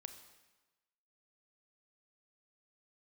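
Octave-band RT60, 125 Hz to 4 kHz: 1.1, 1.1, 1.1, 1.2, 1.1, 1.1 seconds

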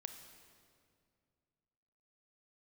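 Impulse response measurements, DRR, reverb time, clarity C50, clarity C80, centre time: 6.5 dB, 2.3 s, 7.5 dB, 9.0 dB, 30 ms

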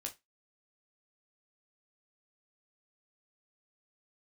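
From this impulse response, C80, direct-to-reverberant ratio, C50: 26.5 dB, 1.5 dB, 16.5 dB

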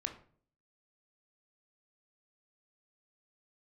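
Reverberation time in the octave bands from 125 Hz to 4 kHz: 0.65, 0.65, 0.55, 0.45, 0.40, 0.30 seconds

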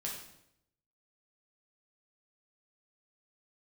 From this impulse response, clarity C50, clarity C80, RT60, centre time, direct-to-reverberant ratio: 4.0 dB, 7.0 dB, 0.80 s, 39 ms, −3.0 dB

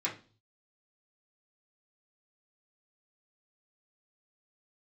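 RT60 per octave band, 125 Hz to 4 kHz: 0.80, 0.50, 0.40, 0.35, 0.30, 0.40 seconds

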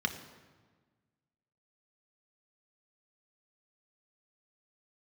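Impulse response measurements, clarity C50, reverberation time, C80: 10.5 dB, 1.4 s, 12.0 dB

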